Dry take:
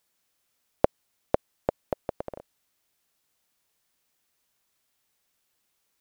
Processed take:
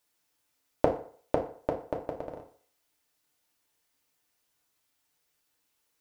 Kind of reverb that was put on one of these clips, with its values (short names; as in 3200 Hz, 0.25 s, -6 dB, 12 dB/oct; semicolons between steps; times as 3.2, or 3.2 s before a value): FDN reverb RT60 0.5 s, low-frequency decay 0.8×, high-frequency decay 0.75×, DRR 0 dB; gain -4 dB